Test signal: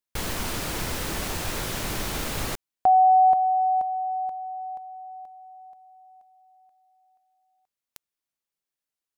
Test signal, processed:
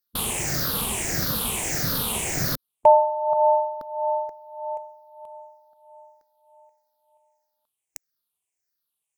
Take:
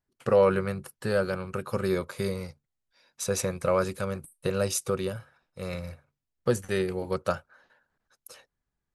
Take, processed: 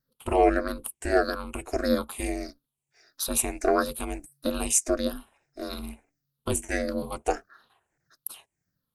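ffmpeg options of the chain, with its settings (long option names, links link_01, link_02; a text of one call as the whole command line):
ffmpeg -i in.wav -af "afftfilt=real='re*pow(10,17/40*sin(2*PI*(0.58*log(max(b,1)*sr/1024/100)/log(2)-(-1.6)*(pts-256)/sr)))':imag='im*pow(10,17/40*sin(2*PI*(0.58*log(max(b,1)*sr/1024/100)/log(2)-(-1.6)*(pts-256)/sr)))':win_size=1024:overlap=0.75,aeval=exprs='val(0)*sin(2*PI*140*n/s)':channel_layout=same,aemphasis=mode=production:type=cd" out.wav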